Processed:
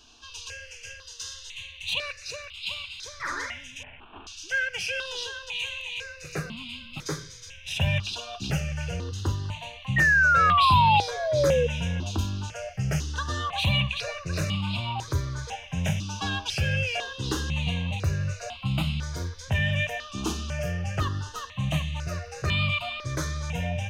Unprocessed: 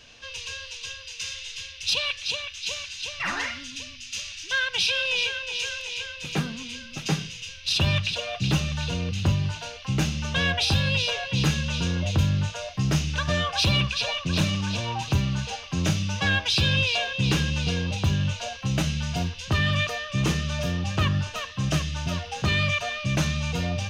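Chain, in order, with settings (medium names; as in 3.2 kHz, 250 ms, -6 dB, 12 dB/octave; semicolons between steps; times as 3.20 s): 3.83–4.27 s: CVSD coder 16 kbps; 9.96–11.67 s: painted sound fall 470–1900 Hz -19 dBFS; stepped phaser 2 Hz 540–1700 Hz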